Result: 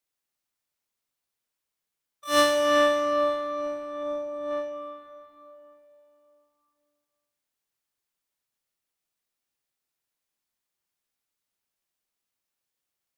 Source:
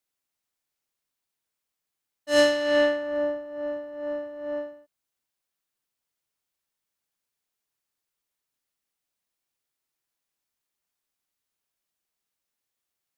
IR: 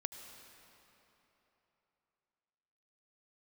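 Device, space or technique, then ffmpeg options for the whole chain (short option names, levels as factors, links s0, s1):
shimmer-style reverb: -filter_complex "[0:a]asplit=2[s0][s1];[s1]asetrate=88200,aresample=44100,atempo=0.5,volume=0.631[s2];[s0][s2]amix=inputs=2:normalize=0[s3];[1:a]atrim=start_sample=2205[s4];[s3][s4]afir=irnorm=-1:irlink=0,asettb=1/sr,asplit=3[s5][s6][s7];[s5]atrim=end=4.034[s8];[s6]atrim=start=4.03:end=4.51,asetpts=PTS-STARTPTS,afade=t=in:d=0.004:c=qsin,afade=t=out:st=0.476:d=0.004:c=qsin,equalizer=f=2300:t=o:w=1.1:g=-6.5[s9];[s7]atrim=start=4.506[s10];[s8][s9]acrossfade=d=0.004:c1=hsin:c2=qsin[s11];[s11][s10]acrossfade=d=0.004:c1=qsin:c2=hsin"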